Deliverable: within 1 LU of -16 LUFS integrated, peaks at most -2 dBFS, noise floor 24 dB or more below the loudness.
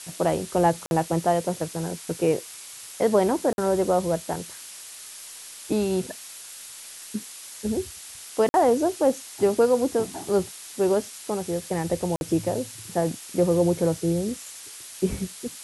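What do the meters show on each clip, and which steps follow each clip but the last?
dropouts 4; longest dropout 51 ms; noise floor -42 dBFS; noise floor target -49 dBFS; loudness -25.0 LUFS; peak level -9.5 dBFS; loudness target -16.0 LUFS
-> interpolate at 0.86/3.53/8.49/12.16 s, 51 ms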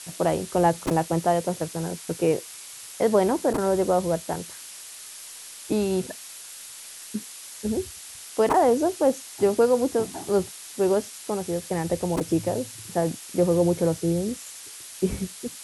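dropouts 0; noise floor -42 dBFS; noise floor target -49 dBFS
-> noise reduction 7 dB, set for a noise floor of -42 dBFS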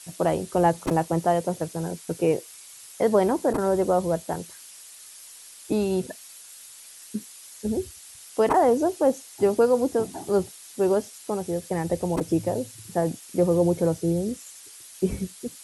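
noise floor -46 dBFS; noise floor target -49 dBFS
-> noise reduction 6 dB, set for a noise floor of -46 dBFS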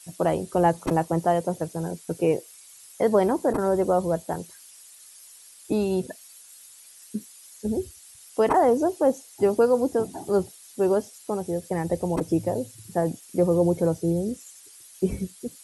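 noise floor -49 dBFS; loudness -25.0 LUFS; peak level -8.0 dBFS; loudness target -16.0 LUFS
-> trim +9 dB; peak limiter -2 dBFS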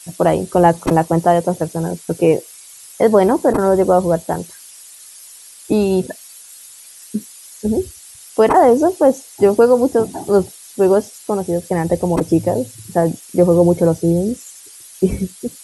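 loudness -16.0 LUFS; peak level -2.0 dBFS; noise floor -40 dBFS

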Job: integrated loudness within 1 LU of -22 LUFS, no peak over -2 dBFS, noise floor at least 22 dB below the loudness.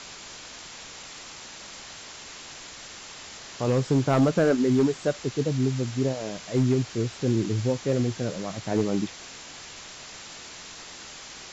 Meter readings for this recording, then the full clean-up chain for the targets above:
clipped samples 0.5%; clipping level -15.0 dBFS; noise floor -43 dBFS; noise floor target -48 dBFS; loudness -25.5 LUFS; peak level -15.0 dBFS; loudness target -22.0 LUFS
-> clip repair -15 dBFS; noise print and reduce 6 dB; trim +3.5 dB

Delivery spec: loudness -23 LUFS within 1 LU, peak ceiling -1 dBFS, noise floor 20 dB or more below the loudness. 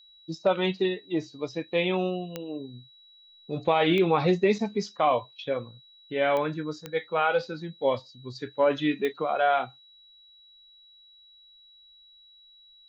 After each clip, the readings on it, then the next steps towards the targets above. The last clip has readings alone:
clicks found 5; steady tone 3.9 kHz; tone level -53 dBFS; loudness -27.0 LUFS; peak level -11.0 dBFS; loudness target -23.0 LUFS
-> de-click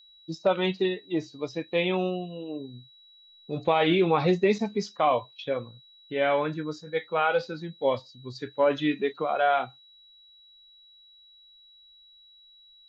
clicks found 0; steady tone 3.9 kHz; tone level -53 dBFS
-> band-stop 3.9 kHz, Q 30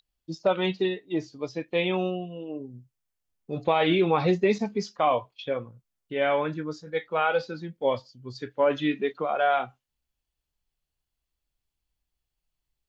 steady tone not found; loudness -27.0 LUFS; peak level -11.0 dBFS; loudness target -23.0 LUFS
-> trim +4 dB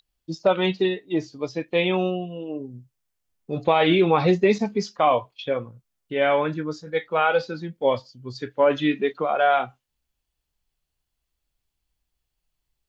loudness -23.0 LUFS; peak level -7.0 dBFS; noise floor -81 dBFS

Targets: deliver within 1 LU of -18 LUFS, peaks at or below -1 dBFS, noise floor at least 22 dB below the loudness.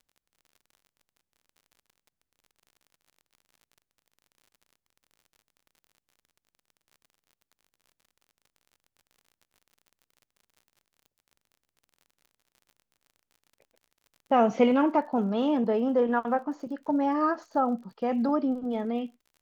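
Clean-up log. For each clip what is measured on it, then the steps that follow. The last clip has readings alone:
tick rate 46 per s; loudness -26.5 LUFS; peak level -10.5 dBFS; loudness target -18.0 LUFS
-> de-click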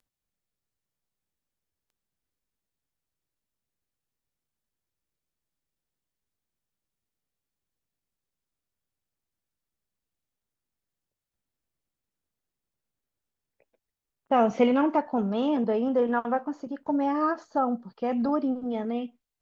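tick rate 0.10 per s; loudness -26.5 LUFS; peak level -10.5 dBFS; loudness target -18.0 LUFS
-> trim +8.5 dB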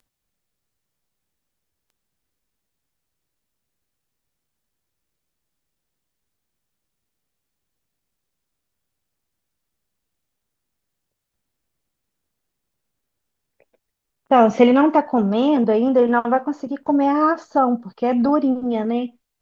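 loudness -18.0 LUFS; peak level -2.0 dBFS; noise floor -79 dBFS

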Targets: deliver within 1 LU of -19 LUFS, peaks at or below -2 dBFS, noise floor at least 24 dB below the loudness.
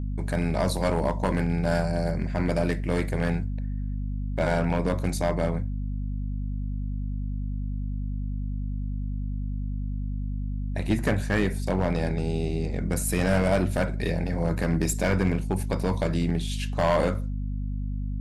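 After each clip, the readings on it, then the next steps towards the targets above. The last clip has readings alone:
clipped samples 0.8%; clipping level -16.0 dBFS; hum 50 Hz; highest harmonic 250 Hz; hum level -27 dBFS; loudness -28.0 LUFS; peak level -16.0 dBFS; loudness target -19.0 LUFS
-> clip repair -16 dBFS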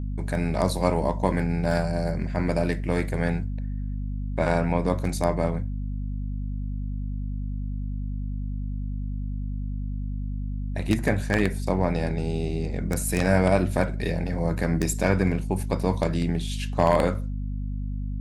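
clipped samples 0.0%; hum 50 Hz; highest harmonic 250 Hz; hum level -27 dBFS
-> hum notches 50/100/150/200/250 Hz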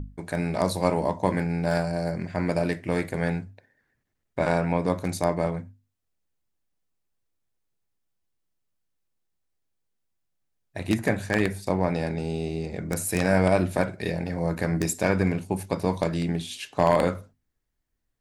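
hum not found; loudness -26.5 LUFS; peak level -7.0 dBFS; loudness target -19.0 LUFS
-> trim +7.5 dB; peak limiter -2 dBFS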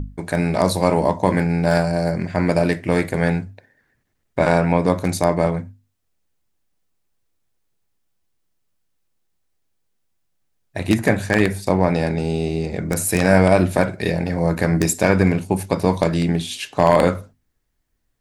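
loudness -19.0 LUFS; peak level -2.0 dBFS; noise floor -70 dBFS

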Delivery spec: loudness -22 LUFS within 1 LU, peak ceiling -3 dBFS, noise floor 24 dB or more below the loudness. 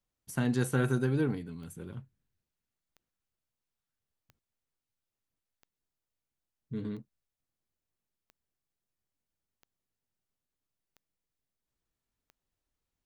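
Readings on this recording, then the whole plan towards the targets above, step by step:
clicks found 10; loudness -32.0 LUFS; peak level -16.0 dBFS; loudness target -22.0 LUFS
-> de-click; trim +10 dB

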